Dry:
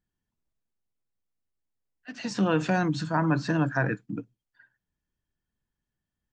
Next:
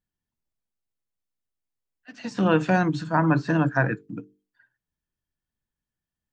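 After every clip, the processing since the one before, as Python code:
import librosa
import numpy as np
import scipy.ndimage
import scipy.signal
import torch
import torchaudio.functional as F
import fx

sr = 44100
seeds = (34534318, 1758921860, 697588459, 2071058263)

y = fx.hum_notches(x, sr, base_hz=50, count=9)
y = fx.dynamic_eq(y, sr, hz=5900.0, q=0.82, threshold_db=-47.0, ratio=4.0, max_db=-4)
y = fx.upward_expand(y, sr, threshold_db=-39.0, expansion=1.5)
y = y * librosa.db_to_amplitude(5.5)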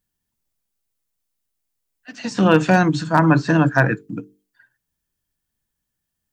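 y = np.clip(x, -10.0 ** (-9.5 / 20.0), 10.0 ** (-9.5 / 20.0))
y = fx.high_shelf(y, sr, hz=5700.0, db=9.0)
y = y * librosa.db_to_amplitude(6.0)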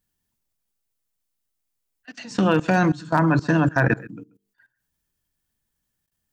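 y = x + 10.0 ** (-19.5 / 20.0) * np.pad(x, (int(135 * sr / 1000.0), 0))[:len(x)]
y = fx.level_steps(y, sr, step_db=20)
y = y * librosa.db_to_amplitude(2.5)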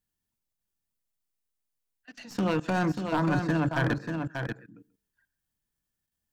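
y = fx.tracing_dist(x, sr, depth_ms=0.063)
y = np.clip(y, -10.0 ** (-13.0 / 20.0), 10.0 ** (-13.0 / 20.0))
y = y + 10.0 ** (-6.0 / 20.0) * np.pad(y, (int(588 * sr / 1000.0), 0))[:len(y)]
y = y * librosa.db_to_amplitude(-7.5)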